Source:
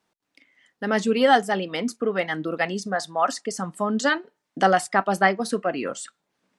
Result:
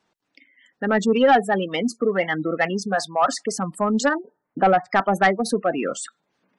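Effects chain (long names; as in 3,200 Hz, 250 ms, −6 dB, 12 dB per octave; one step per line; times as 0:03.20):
0:04.08–0:04.91: low-pass filter 1,200 Hz → 2,100 Hz 12 dB per octave
gate on every frequency bin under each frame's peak −20 dB strong
soft clipping −12 dBFS, distortion −16 dB
level +4 dB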